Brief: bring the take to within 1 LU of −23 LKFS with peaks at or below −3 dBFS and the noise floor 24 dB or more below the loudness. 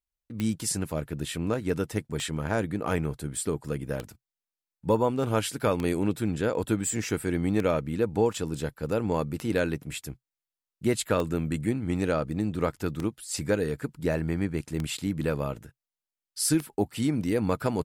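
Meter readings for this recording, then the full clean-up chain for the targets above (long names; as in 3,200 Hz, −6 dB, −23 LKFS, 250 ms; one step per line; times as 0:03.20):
number of clicks 10; integrated loudness −29.0 LKFS; sample peak −13.0 dBFS; target loudness −23.0 LKFS
→ click removal
level +6 dB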